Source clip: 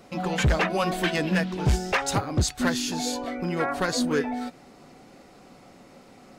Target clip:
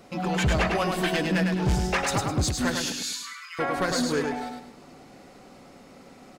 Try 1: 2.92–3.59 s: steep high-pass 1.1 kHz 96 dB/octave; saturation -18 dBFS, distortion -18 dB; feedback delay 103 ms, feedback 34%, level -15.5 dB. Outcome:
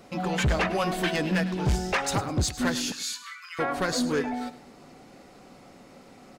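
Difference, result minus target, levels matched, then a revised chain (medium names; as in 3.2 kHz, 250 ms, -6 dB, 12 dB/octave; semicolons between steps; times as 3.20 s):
echo-to-direct -11 dB
2.92–3.59 s: steep high-pass 1.1 kHz 96 dB/octave; saturation -18 dBFS, distortion -18 dB; feedback delay 103 ms, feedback 34%, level -4.5 dB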